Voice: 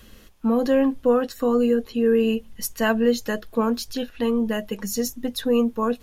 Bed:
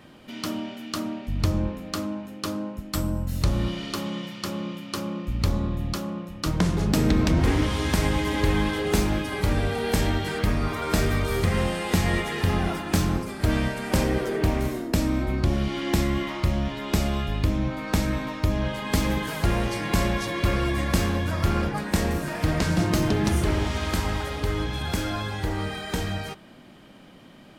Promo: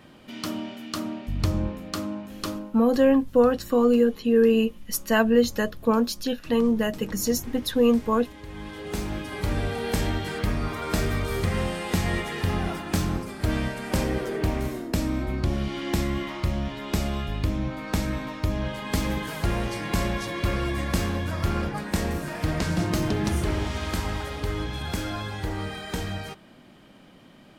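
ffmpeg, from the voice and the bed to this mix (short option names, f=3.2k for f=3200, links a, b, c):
-filter_complex "[0:a]adelay=2300,volume=0.5dB[a];[1:a]volume=15.5dB,afade=t=out:st=2.49:d=0.32:silence=0.125893,afade=t=in:st=8.47:d=1.14:silence=0.149624[b];[a][b]amix=inputs=2:normalize=0"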